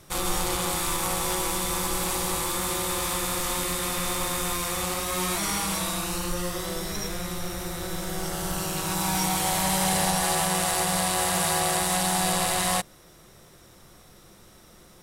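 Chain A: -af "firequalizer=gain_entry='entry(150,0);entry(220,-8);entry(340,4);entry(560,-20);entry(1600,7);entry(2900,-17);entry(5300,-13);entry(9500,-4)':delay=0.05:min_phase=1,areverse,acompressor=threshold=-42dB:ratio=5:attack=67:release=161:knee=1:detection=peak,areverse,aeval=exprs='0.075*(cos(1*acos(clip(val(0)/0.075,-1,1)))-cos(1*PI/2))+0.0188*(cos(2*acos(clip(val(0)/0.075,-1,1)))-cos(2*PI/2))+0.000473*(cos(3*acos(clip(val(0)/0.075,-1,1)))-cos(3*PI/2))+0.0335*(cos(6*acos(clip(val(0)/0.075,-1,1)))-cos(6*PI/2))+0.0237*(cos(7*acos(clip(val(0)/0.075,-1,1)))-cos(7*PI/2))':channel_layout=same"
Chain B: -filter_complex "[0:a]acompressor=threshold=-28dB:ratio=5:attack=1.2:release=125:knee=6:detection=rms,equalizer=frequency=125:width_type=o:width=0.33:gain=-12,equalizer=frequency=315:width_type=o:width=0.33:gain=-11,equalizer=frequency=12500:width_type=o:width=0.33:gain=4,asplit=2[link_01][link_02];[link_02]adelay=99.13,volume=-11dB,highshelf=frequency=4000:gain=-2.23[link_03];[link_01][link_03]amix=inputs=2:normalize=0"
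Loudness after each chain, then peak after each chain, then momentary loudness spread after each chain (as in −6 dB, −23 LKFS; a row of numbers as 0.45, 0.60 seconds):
−35.0, −32.0 LKFS; −17.0, −18.0 dBFS; 19, 20 LU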